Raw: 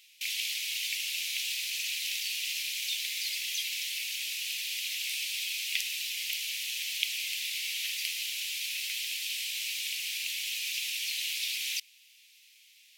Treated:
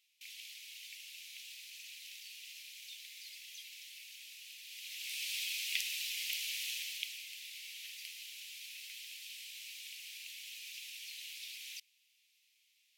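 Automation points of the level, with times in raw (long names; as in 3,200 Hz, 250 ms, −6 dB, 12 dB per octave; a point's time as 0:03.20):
0:04.61 −17 dB
0:05.31 −4.5 dB
0:06.70 −4.5 dB
0:07.26 −14 dB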